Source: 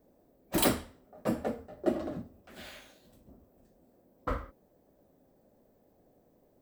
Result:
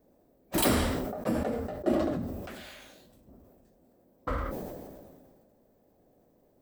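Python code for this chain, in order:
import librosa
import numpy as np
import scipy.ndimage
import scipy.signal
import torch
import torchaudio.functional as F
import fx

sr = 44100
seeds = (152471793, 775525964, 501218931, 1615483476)

y = fx.sustainer(x, sr, db_per_s=30.0)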